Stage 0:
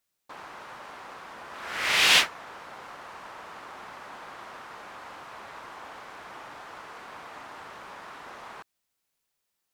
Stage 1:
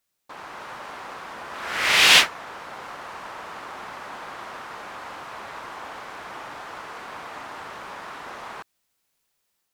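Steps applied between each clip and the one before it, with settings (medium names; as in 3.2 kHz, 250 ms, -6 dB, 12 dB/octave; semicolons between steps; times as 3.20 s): level rider gain up to 3.5 dB; trim +2.5 dB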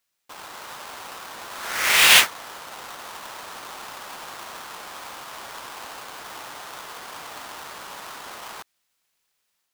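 square wave that keeps the level; tilt shelf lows -4 dB, about 810 Hz; trim -6 dB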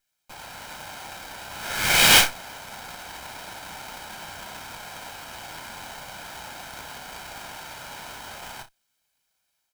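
comb filter that takes the minimum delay 1.3 ms; on a send: early reflections 32 ms -8.5 dB, 63 ms -17.5 dB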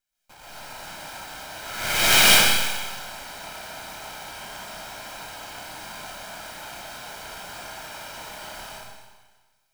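algorithmic reverb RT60 1.4 s, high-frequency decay 1×, pre-delay 90 ms, DRR -7.5 dB; trim -7 dB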